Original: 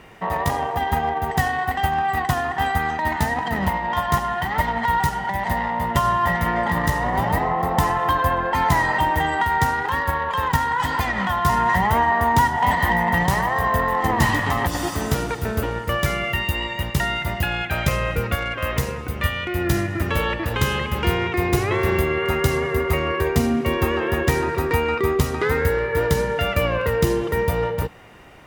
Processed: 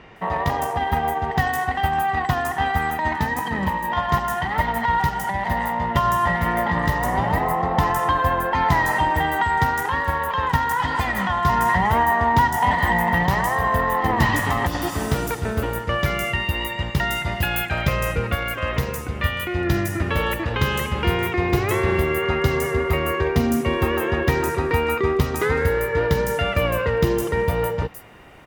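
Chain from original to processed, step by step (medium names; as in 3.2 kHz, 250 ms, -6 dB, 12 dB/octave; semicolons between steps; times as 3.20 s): 3.15–3.92 s: comb of notches 700 Hz; 17.25–17.67 s: treble shelf 5.3 kHz -> 8.3 kHz +10 dB; bands offset in time lows, highs 160 ms, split 5.9 kHz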